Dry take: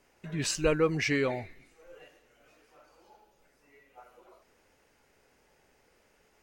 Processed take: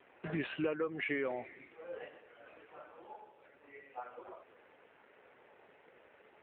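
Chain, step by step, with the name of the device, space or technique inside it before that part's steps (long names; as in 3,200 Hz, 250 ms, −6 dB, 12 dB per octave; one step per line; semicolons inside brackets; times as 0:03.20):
voicemail (band-pass filter 310–2,600 Hz; downward compressor 8 to 1, threshold −41 dBFS, peak gain reduction 18.5 dB; level +9 dB; AMR narrowband 7.4 kbit/s 8,000 Hz)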